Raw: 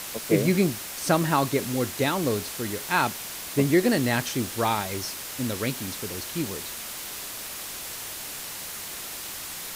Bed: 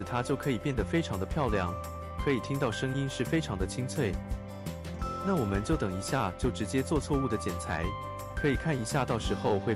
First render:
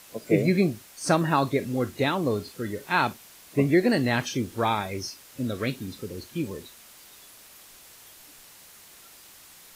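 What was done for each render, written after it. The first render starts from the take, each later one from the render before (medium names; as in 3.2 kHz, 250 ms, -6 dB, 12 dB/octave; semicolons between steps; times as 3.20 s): noise print and reduce 14 dB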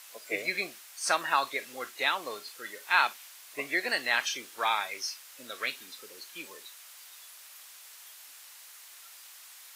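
high-pass 990 Hz 12 dB/octave; dynamic bell 2.5 kHz, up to +3 dB, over -44 dBFS, Q 0.78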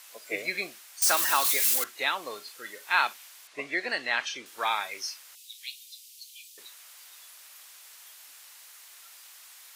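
1.02–1.84 s: zero-crossing glitches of -18 dBFS; 3.47–4.46 s: distance through air 72 m; 5.35–6.58 s: inverse Chebyshev high-pass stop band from 1.5 kHz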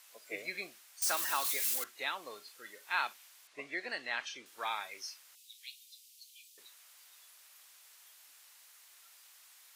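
trim -9 dB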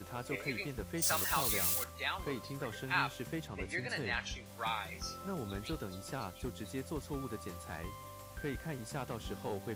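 add bed -11.5 dB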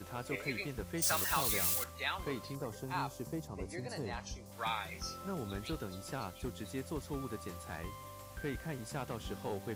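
2.55–4.52 s: high-order bell 2.3 kHz -12 dB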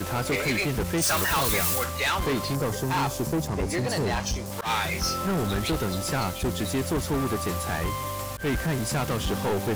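waveshaping leveller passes 5; slow attack 103 ms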